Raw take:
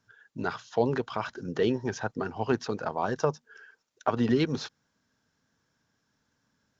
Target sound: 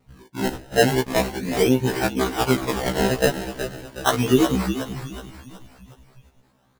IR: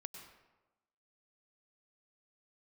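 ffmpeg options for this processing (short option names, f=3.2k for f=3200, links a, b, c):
-filter_complex "[0:a]equalizer=f=860:t=o:w=0.77:g=3,asplit=2[a][b];[b]acompressor=threshold=-37dB:ratio=6,volume=-1.5dB[c];[a][c]amix=inputs=2:normalize=0,acrusher=samples=26:mix=1:aa=0.000001:lfo=1:lforange=26:lforate=0.39,asplit=6[d][e][f][g][h][i];[e]adelay=369,afreqshift=-50,volume=-9dB[j];[f]adelay=738,afreqshift=-100,volume=-15.6dB[k];[g]adelay=1107,afreqshift=-150,volume=-22.1dB[l];[h]adelay=1476,afreqshift=-200,volume=-28.7dB[m];[i]adelay=1845,afreqshift=-250,volume=-35.2dB[n];[d][j][k][l][m][n]amix=inputs=6:normalize=0,afftfilt=real='re*1.73*eq(mod(b,3),0)':imag='im*1.73*eq(mod(b,3),0)':win_size=2048:overlap=0.75,volume=7.5dB"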